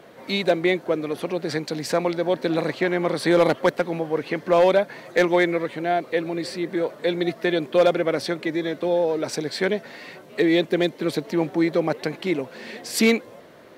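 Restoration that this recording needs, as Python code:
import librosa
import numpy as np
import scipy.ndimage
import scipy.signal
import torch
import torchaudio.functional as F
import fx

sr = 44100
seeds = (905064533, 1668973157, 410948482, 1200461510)

y = fx.fix_declip(x, sr, threshold_db=-10.0)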